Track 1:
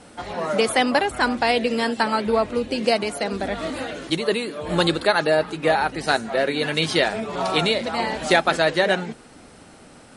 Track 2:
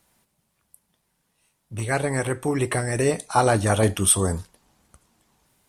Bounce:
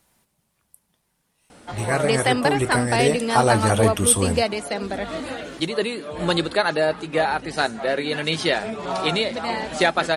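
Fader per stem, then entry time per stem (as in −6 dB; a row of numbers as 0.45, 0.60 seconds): −1.5, +1.0 decibels; 1.50, 0.00 seconds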